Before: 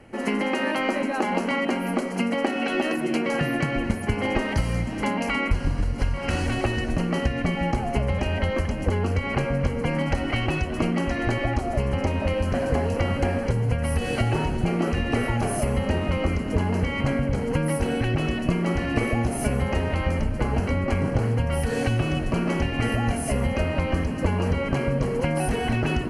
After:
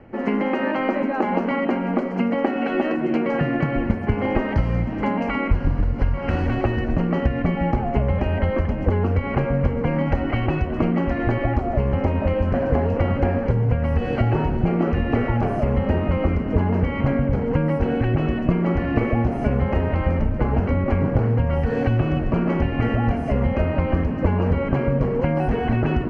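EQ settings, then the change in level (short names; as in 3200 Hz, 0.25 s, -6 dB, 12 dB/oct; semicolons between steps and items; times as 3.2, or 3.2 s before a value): air absorption 170 m; bell 3600 Hz -5 dB 1.6 oct; high shelf 4700 Hz -11 dB; +4.0 dB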